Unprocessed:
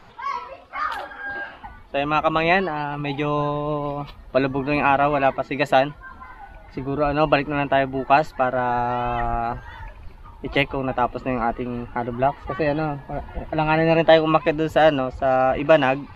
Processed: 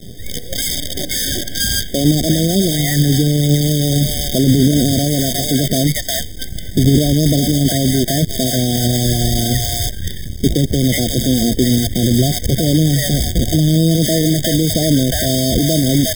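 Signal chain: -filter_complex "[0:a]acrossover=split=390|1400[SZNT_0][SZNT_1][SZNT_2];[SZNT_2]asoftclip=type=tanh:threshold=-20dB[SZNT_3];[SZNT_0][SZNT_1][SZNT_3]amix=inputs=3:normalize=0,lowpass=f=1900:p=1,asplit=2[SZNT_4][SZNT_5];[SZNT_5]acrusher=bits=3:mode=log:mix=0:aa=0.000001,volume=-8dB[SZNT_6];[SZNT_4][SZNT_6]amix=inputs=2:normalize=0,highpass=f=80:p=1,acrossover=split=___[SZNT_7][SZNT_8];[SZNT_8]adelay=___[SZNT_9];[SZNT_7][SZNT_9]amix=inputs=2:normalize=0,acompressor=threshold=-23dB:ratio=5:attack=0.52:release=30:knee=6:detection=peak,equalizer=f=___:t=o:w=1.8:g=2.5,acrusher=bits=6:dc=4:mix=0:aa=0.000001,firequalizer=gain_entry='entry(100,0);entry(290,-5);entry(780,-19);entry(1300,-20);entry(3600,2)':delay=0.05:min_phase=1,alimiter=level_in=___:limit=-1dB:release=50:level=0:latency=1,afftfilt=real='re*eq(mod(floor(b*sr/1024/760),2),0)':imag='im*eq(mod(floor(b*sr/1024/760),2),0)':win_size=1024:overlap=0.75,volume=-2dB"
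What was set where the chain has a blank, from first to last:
800, 360, 140, 24.5dB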